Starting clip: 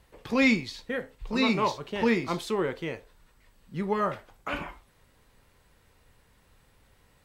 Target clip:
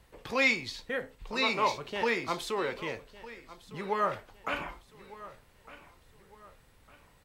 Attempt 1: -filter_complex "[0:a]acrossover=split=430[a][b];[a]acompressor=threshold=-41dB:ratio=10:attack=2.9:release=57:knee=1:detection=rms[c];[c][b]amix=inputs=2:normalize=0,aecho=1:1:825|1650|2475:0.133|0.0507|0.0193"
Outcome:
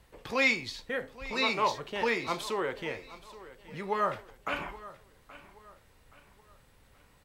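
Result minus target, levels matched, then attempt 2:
echo 0.381 s early
-filter_complex "[0:a]acrossover=split=430[a][b];[a]acompressor=threshold=-41dB:ratio=10:attack=2.9:release=57:knee=1:detection=rms[c];[c][b]amix=inputs=2:normalize=0,aecho=1:1:1206|2412|3618:0.133|0.0507|0.0193"

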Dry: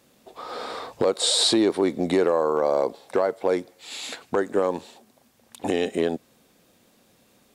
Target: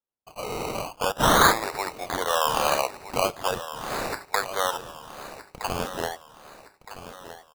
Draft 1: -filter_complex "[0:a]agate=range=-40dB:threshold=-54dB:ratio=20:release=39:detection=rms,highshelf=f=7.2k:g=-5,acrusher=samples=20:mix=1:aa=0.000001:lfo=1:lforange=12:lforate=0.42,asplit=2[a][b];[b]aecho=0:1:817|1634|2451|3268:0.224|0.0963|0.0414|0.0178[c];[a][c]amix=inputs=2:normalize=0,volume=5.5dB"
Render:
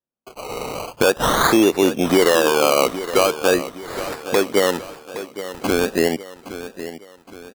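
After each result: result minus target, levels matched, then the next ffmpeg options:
echo 0.449 s early; 1000 Hz band -5.5 dB
-filter_complex "[0:a]agate=range=-40dB:threshold=-54dB:ratio=20:release=39:detection=rms,highshelf=f=7.2k:g=-5,acrusher=samples=20:mix=1:aa=0.000001:lfo=1:lforange=12:lforate=0.42,asplit=2[a][b];[b]aecho=0:1:1266|2532|3798|5064:0.224|0.0963|0.0414|0.0178[c];[a][c]amix=inputs=2:normalize=0,volume=5.5dB"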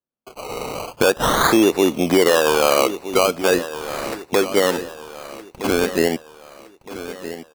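1000 Hz band -5.5 dB
-filter_complex "[0:a]agate=range=-40dB:threshold=-54dB:ratio=20:release=39:detection=rms,highpass=f=740:w=0.5412,highpass=f=740:w=1.3066,highshelf=f=7.2k:g=-5,acrusher=samples=20:mix=1:aa=0.000001:lfo=1:lforange=12:lforate=0.42,asplit=2[a][b];[b]aecho=0:1:1266|2532|3798|5064:0.224|0.0963|0.0414|0.0178[c];[a][c]amix=inputs=2:normalize=0,volume=5.5dB"

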